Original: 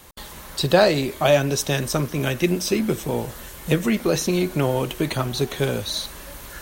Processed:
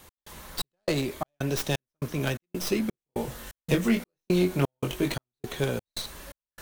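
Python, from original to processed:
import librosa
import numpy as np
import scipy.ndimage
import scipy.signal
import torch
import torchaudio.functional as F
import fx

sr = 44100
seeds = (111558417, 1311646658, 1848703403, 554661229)

y = fx.tracing_dist(x, sr, depth_ms=0.12)
y = fx.doubler(y, sr, ms=22.0, db=-4, at=(2.91, 5.14))
y = fx.step_gate(y, sr, bpm=171, pattern='x..xxxx...xxx', floor_db=-60.0, edge_ms=4.5)
y = y * 10.0 ** (-5.0 / 20.0)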